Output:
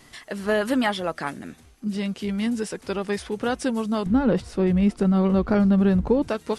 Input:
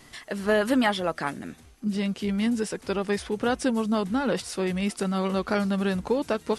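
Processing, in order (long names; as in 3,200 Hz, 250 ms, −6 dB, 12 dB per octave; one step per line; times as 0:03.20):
0:04.06–0:06.28: spectral tilt −3.5 dB per octave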